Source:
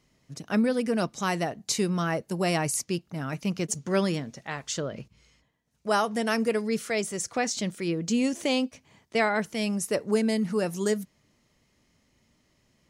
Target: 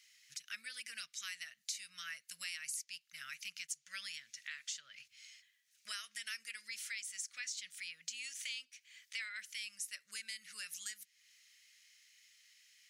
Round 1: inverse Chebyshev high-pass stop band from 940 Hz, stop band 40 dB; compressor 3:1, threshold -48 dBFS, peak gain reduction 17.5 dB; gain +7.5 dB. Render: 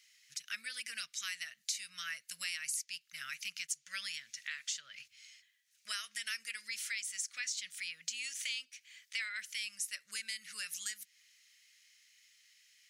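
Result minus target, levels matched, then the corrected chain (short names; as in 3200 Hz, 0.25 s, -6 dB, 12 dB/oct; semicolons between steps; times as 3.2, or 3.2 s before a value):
compressor: peak gain reduction -4.5 dB
inverse Chebyshev high-pass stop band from 940 Hz, stop band 40 dB; compressor 3:1, threshold -54.5 dBFS, peak gain reduction 22 dB; gain +7.5 dB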